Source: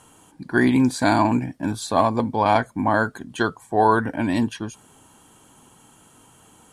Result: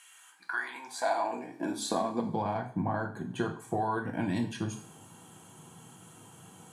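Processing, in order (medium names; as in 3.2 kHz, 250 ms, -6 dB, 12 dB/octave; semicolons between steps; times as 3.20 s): 2.42–3.60 s: treble shelf 2.2 kHz -10 dB; compression 10:1, threshold -27 dBFS, peak gain reduction 15 dB; two-slope reverb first 0.44 s, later 2 s, from -27 dB, DRR 2.5 dB; high-pass sweep 2.1 kHz -> 130 Hz, 0.06–2.50 s; trim -3.5 dB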